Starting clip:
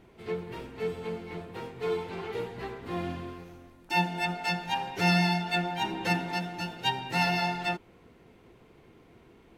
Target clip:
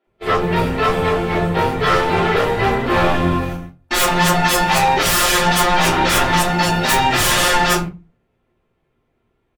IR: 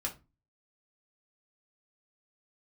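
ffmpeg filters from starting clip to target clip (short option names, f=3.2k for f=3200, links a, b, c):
-filter_complex "[0:a]aeval=exprs='0.251*sin(PI/2*10*val(0)/0.251)':c=same,acrossover=split=250|5200[a][b][c];[c]adelay=40[d];[a]adelay=70[e];[e][b][d]amix=inputs=3:normalize=0,agate=range=-35dB:threshold=-24dB:ratio=16:detection=peak[f];[1:a]atrim=start_sample=2205[g];[f][g]afir=irnorm=-1:irlink=0,volume=-1dB"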